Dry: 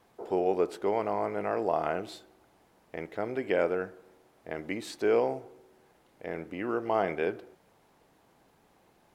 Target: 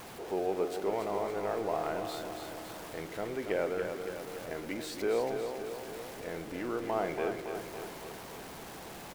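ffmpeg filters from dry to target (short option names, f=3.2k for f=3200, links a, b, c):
-af "aeval=exprs='val(0)+0.5*0.0168*sgn(val(0))':c=same,aecho=1:1:280|560|840|1120|1400|1680|1960|2240:0.447|0.264|0.155|0.0917|0.0541|0.0319|0.0188|0.0111,volume=-6dB"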